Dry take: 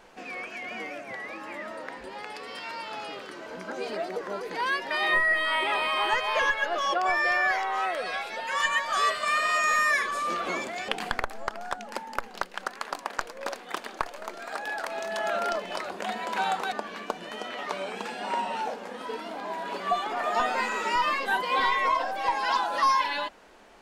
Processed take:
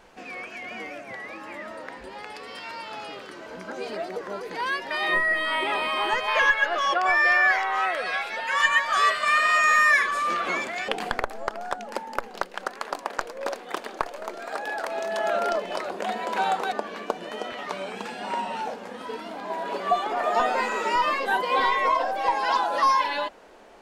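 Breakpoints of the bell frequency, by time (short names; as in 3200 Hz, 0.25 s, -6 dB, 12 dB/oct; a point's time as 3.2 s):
bell +6 dB 1.7 oct
65 Hz
from 5.08 s 240 Hz
from 6.28 s 1800 Hz
from 10.88 s 470 Hz
from 17.52 s 110 Hz
from 19.5 s 510 Hz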